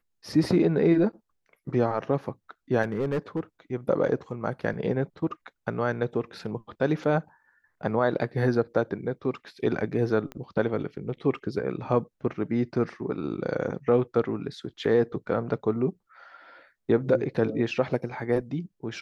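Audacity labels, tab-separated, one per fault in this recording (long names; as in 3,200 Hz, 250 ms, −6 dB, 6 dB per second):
2.820000	3.400000	clipping −22.5 dBFS
10.320000	10.320000	click −24 dBFS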